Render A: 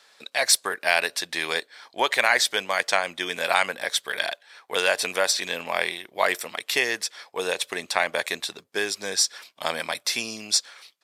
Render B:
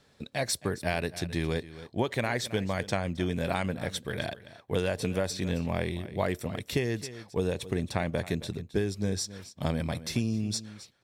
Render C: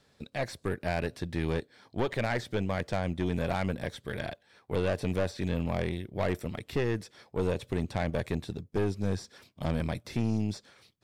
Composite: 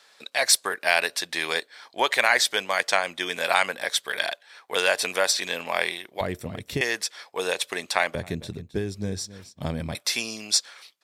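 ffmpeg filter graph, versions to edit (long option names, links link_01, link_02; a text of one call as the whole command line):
ffmpeg -i take0.wav -i take1.wav -filter_complex "[1:a]asplit=2[link_01][link_02];[0:a]asplit=3[link_03][link_04][link_05];[link_03]atrim=end=6.212[link_06];[link_01]atrim=start=6.208:end=6.812[link_07];[link_04]atrim=start=6.808:end=8.152[link_08];[link_02]atrim=start=8.148:end=9.952[link_09];[link_05]atrim=start=9.948[link_10];[link_06][link_07]acrossfade=duration=0.004:curve1=hsin:curve2=hsin[link_11];[link_11][link_08]acrossfade=duration=0.004:curve1=hsin:curve2=hsin[link_12];[link_12][link_09]acrossfade=duration=0.004:curve1=hsin:curve2=hsin[link_13];[link_13][link_10]acrossfade=duration=0.004:curve1=hsin:curve2=hsin" out.wav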